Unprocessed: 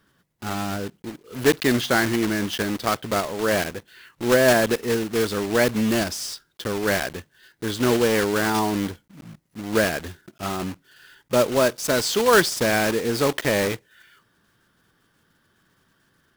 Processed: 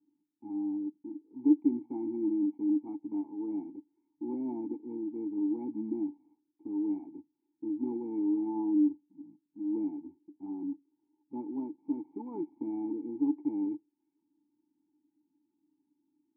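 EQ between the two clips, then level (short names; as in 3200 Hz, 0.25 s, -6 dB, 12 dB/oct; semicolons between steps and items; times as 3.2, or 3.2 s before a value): vocal tract filter u; vowel filter u; air absorption 450 m; +5.0 dB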